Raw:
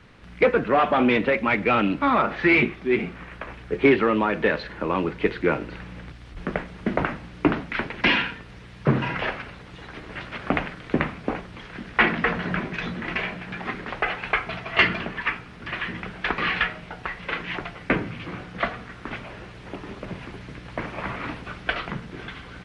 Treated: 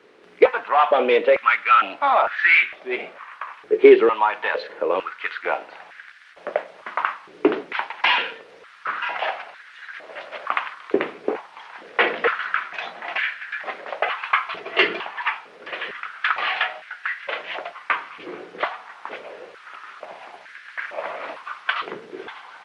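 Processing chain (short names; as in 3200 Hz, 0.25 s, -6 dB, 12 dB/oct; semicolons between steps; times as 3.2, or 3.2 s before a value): dynamic EQ 3200 Hz, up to +5 dB, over -39 dBFS, Q 1.8; stepped high-pass 2.2 Hz 400–1600 Hz; gain -2.5 dB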